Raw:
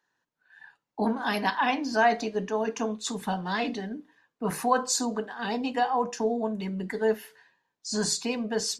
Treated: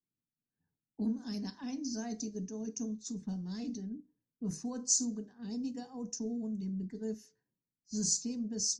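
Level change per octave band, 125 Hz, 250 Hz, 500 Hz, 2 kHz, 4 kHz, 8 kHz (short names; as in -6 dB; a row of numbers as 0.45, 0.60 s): -4.5, -5.0, -17.5, -28.0, -9.0, -0.5 dB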